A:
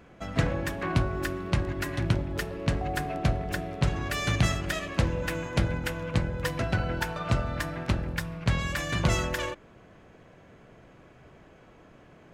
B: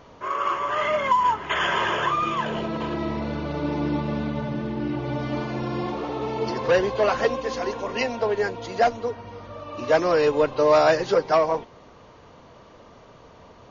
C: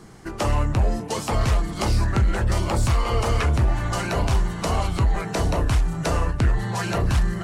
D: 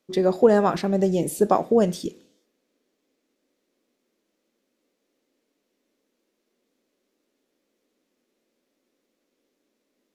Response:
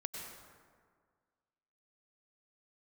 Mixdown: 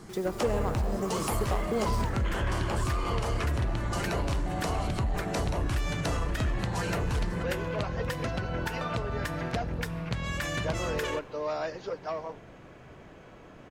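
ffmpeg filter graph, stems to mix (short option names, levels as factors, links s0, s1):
-filter_complex "[0:a]acompressor=threshold=0.0355:ratio=6,adelay=1650,volume=1.41,asplit=2[s0][s1];[s1]volume=0.0891[s2];[1:a]adelay=750,volume=0.178[s3];[2:a]volume=0.708,asplit=2[s4][s5];[s5]volume=0.141[s6];[3:a]aeval=exprs='0.631*(cos(1*acos(clip(val(0)/0.631,-1,1)))-cos(1*PI/2))+0.0447*(cos(7*acos(clip(val(0)/0.631,-1,1)))-cos(7*PI/2))':c=same,aexciter=amount=2:drive=7.8:freq=6300,acrusher=bits=6:mix=0:aa=0.000001,volume=0.422,asplit=2[s7][s8];[s8]volume=0.422[s9];[s0][s4][s7]amix=inputs=3:normalize=0,acompressor=threshold=0.0398:ratio=4,volume=1[s10];[4:a]atrim=start_sample=2205[s11];[s2][s6][s9]amix=inputs=3:normalize=0[s12];[s12][s11]afir=irnorm=-1:irlink=0[s13];[s3][s10][s13]amix=inputs=3:normalize=0,asoftclip=type=tanh:threshold=0.126"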